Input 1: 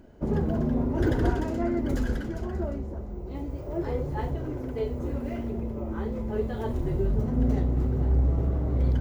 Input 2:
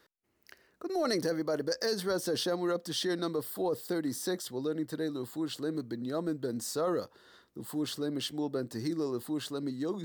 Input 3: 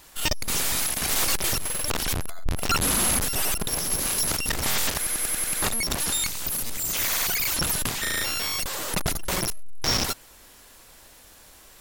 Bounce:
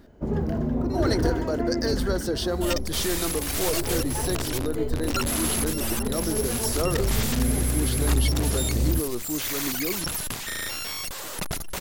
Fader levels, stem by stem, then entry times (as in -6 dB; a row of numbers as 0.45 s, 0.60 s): 0.0 dB, +3.0 dB, -4.5 dB; 0.00 s, 0.00 s, 2.45 s